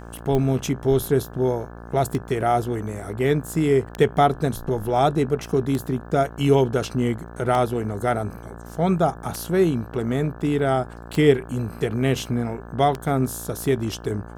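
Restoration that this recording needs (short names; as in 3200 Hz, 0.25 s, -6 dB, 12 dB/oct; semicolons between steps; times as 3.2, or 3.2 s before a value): de-click; de-hum 57.7 Hz, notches 30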